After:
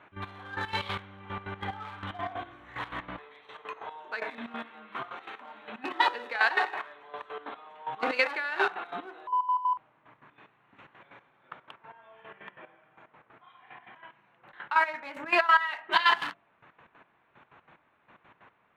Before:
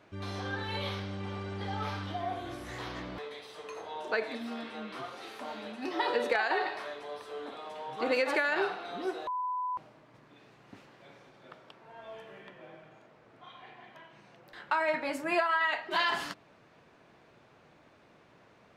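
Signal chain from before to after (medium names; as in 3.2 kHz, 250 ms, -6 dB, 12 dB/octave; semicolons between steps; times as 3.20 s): local Wiener filter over 9 samples; high-order bell 1.9 kHz +9.5 dB 2.7 oct; de-hum 52.99 Hz, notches 14; trance gate "x.x....x." 185 bpm -12 dB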